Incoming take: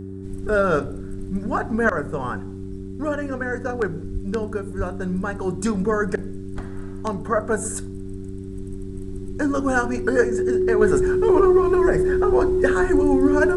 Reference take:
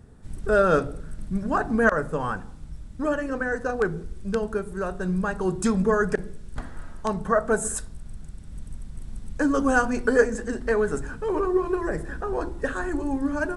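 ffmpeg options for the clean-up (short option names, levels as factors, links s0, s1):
-filter_complex "[0:a]bandreject=f=96.1:t=h:w=4,bandreject=f=192.2:t=h:w=4,bandreject=f=288.3:t=h:w=4,bandreject=f=384.4:t=h:w=4,bandreject=f=370:w=30,asplit=3[s0][s1][s2];[s0]afade=t=out:st=4.13:d=0.02[s3];[s1]highpass=f=140:w=0.5412,highpass=f=140:w=1.3066,afade=t=in:st=4.13:d=0.02,afade=t=out:st=4.25:d=0.02[s4];[s2]afade=t=in:st=4.25:d=0.02[s5];[s3][s4][s5]amix=inputs=3:normalize=0,asplit=3[s6][s7][s8];[s6]afade=t=out:st=4.77:d=0.02[s9];[s7]highpass=f=140:w=0.5412,highpass=f=140:w=1.3066,afade=t=in:st=4.77:d=0.02,afade=t=out:st=4.89:d=0.02[s10];[s8]afade=t=in:st=4.89:d=0.02[s11];[s9][s10][s11]amix=inputs=3:normalize=0,asetnsamples=n=441:p=0,asendcmd='10.81 volume volume -6.5dB',volume=1"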